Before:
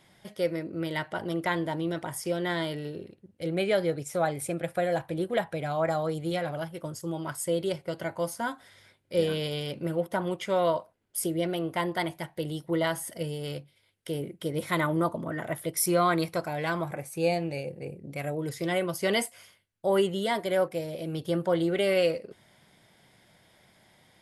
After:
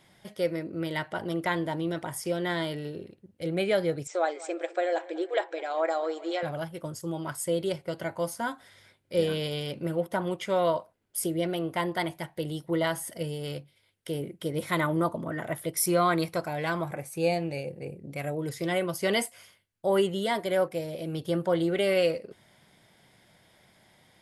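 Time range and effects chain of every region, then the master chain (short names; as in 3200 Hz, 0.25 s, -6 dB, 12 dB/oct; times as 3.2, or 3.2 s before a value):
4.07–6.43 brick-wall FIR band-pass 300–8200 Hz + tape echo 0.198 s, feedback 65%, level -18 dB, low-pass 4600 Hz
whole clip: dry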